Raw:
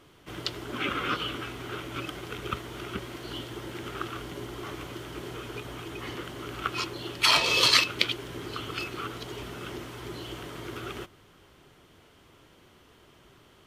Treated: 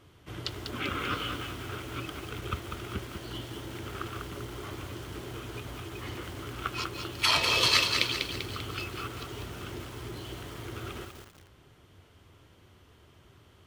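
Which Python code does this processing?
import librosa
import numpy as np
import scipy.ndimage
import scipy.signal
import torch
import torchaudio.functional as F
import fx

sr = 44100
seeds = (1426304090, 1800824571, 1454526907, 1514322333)

y = fx.peak_eq(x, sr, hz=87.0, db=12.0, octaves=0.97)
y = fx.echo_crushed(y, sr, ms=196, feedback_pct=55, bits=7, wet_db=-5.0)
y = F.gain(torch.from_numpy(y), -3.5).numpy()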